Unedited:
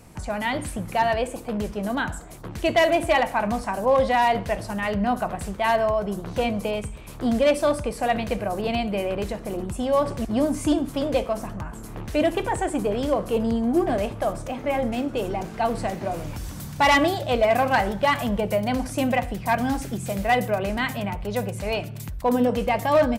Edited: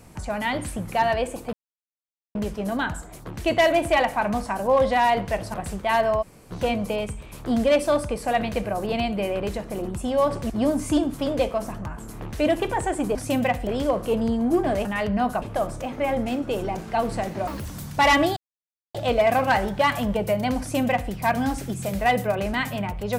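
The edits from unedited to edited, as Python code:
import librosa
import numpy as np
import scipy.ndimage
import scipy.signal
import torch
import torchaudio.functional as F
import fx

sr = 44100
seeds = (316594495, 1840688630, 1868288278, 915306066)

y = fx.edit(x, sr, fx.insert_silence(at_s=1.53, length_s=0.82),
    fx.move(start_s=4.72, length_s=0.57, to_s=14.08),
    fx.room_tone_fill(start_s=5.97, length_s=0.29, crossfade_s=0.02),
    fx.speed_span(start_s=16.13, length_s=0.34, speed=1.84),
    fx.insert_silence(at_s=17.18, length_s=0.58),
    fx.duplicate(start_s=18.83, length_s=0.52, to_s=12.9), tone=tone)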